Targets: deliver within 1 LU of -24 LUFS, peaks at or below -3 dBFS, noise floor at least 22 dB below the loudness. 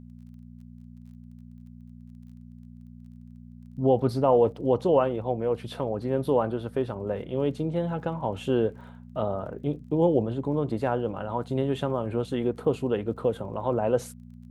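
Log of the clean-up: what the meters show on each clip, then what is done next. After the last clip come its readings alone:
tick rate 26 per s; hum 60 Hz; highest harmonic 240 Hz; hum level -45 dBFS; loudness -27.0 LUFS; peak level -10.0 dBFS; loudness target -24.0 LUFS
-> de-click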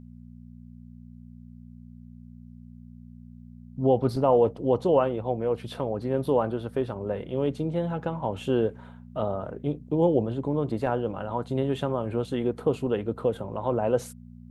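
tick rate 0 per s; hum 60 Hz; highest harmonic 240 Hz; hum level -45 dBFS
-> de-hum 60 Hz, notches 4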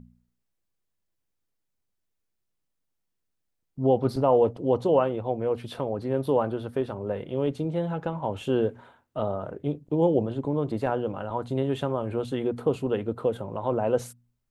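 hum not found; loudness -27.0 LUFS; peak level -10.0 dBFS; loudness target -24.0 LUFS
-> trim +3 dB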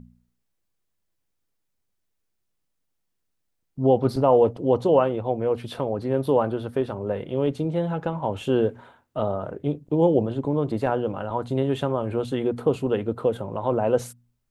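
loudness -24.5 LUFS; peak level -7.0 dBFS; noise floor -76 dBFS

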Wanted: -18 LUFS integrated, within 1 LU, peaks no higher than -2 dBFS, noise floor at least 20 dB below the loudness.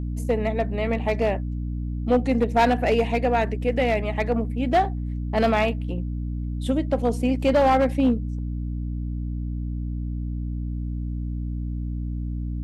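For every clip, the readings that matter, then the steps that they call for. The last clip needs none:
clipped samples 0.8%; clipping level -13.0 dBFS; hum 60 Hz; highest harmonic 300 Hz; hum level -26 dBFS; loudness -24.5 LUFS; peak level -13.0 dBFS; loudness target -18.0 LUFS
-> clip repair -13 dBFS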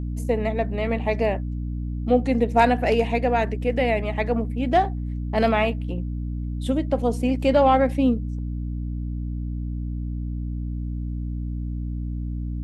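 clipped samples 0.0%; hum 60 Hz; highest harmonic 300 Hz; hum level -26 dBFS
-> de-hum 60 Hz, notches 5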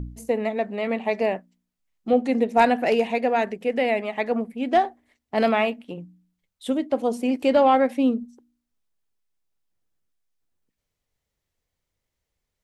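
hum not found; loudness -23.0 LUFS; peak level -6.0 dBFS; loudness target -18.0 LUFS
-> trim +5 dB; peak limiter -2 dBFS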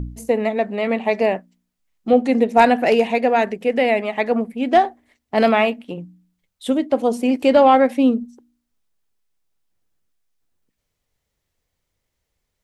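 loudness -18.0 LUFS; peak level -2.0 dBFS; noise floor -77 dBFS

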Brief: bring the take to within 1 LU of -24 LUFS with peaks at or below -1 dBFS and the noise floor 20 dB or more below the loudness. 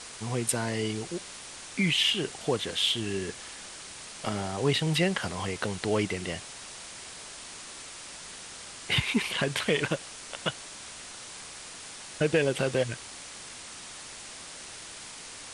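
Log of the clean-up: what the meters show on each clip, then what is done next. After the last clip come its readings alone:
noise floor -44 dBFS; noise floor target -51 dBFS; loudness -31.0 LUFS; peak level -12.5 dBFS; loudness target -24.0 LUFS
-> noise print and reduce 7 dB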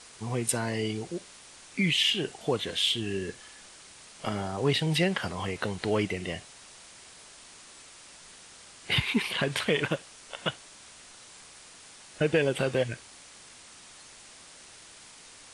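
noise floor -51 dBFS; loudness -29.0 LUFS; peak level -12.5 dBFS; loudness target -24.0 LUFS
-> trim +5 dB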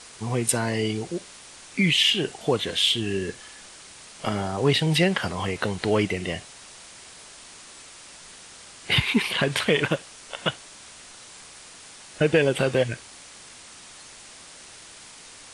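loudness -24.0 LUFS; peak level -7.5 dBFS; noise floor -46 dBFS

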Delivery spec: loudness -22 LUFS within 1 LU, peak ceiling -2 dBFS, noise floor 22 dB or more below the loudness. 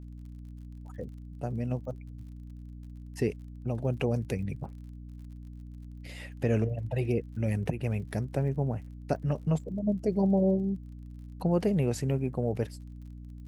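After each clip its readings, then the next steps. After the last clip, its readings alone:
tick rate 43 per s; hum 60 Hz; highest harmonic 300 Hz; hum level -42 dBFS; loudness -31.0 LUFS; peak level -13.5 dBFS; loudness target -22.0 LUFS
-> de-click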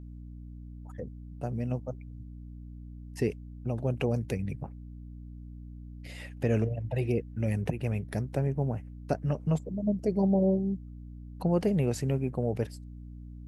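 tick rate 0 per s; hum 60 Hz; highest harmonic 300 Hz; hum level -42 dBFS
-> de-hum 60 Hz, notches 5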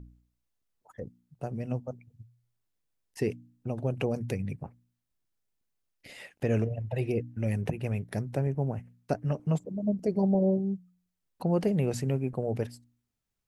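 hum not found; loudness -31.0 LUFS; peak level -13.5 dBFS; loudness target -22.0 LUFS
-> trim +9 dB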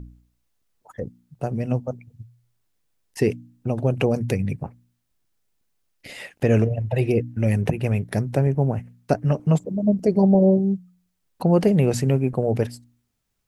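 loudness -22.0 LUFS; peak level -4.5 dBFS; noise floor -73 dBFS

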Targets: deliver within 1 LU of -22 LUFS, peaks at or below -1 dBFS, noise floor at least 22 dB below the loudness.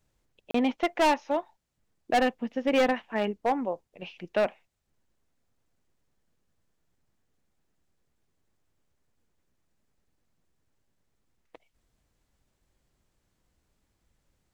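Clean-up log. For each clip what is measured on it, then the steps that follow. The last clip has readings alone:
clipped samples 0.7%; clipping level -18.5 dBFS; dropouts 1; longest dropout 34 ms; loudness -28.0 LUFS; peak level -18.5 dBFS; loudness target -22.0 LUFS
-> clip repair -18.5 dBFS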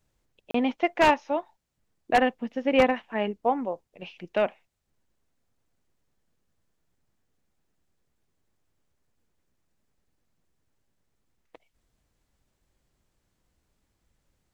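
clipped samples 0.0%; dropouts 1; longest dropout 34 ms
-> interpolate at 0.51 s, 34 ms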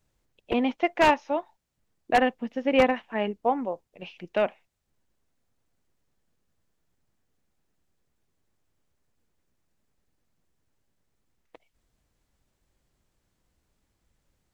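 dropouts 0; loudness -26.0 LUFS; peak level -9.5 dBFS; loudness target -22.0 LUFS
-> trim +4 dB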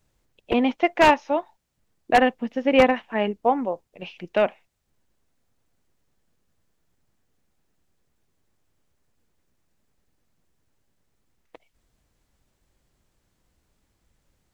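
loudness -22.0 LUFS; peak level -5.5 dBFS; noise floor -72 dBFS

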